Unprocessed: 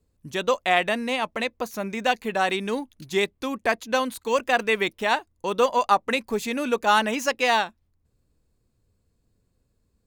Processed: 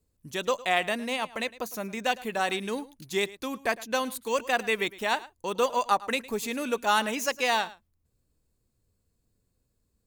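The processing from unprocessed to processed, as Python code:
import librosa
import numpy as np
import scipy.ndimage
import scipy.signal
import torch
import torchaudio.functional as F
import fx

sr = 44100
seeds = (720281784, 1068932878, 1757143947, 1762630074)

p1 = fx.high_shelf(x, sr, hz=6400.0, db=9.0)
p2 = p1 + fx.echo_single(p1, sr, ms=108, db=-19.0, dry=0)
y = F.gain(torch.from_numpy(p2), -5.0).numpy()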